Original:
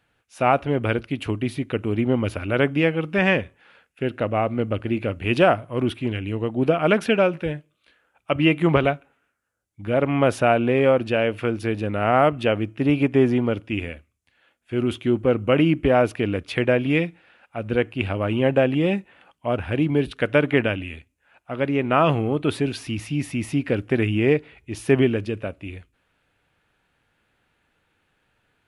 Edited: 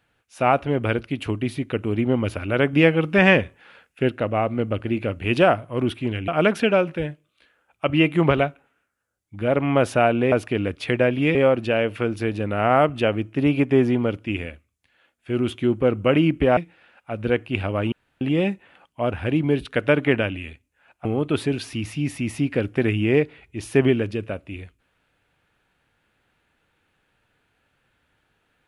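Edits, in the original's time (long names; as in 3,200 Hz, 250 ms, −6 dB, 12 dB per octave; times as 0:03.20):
0:02.73–0:04.10: clip gain +4 dB
0:06.28–0:06.74: remove
0:16.00–0:17.03: move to 0:10.78
0:18.38–0:18.67: fill with room tone
0:21.51–0:22.19: remove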